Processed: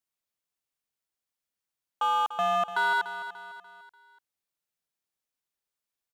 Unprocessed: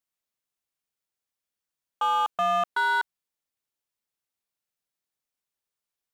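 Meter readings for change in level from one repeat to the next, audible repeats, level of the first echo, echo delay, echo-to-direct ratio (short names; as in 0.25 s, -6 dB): -7.0 dB, 4, -12.0 dB, 0.293 s, -11.0 dB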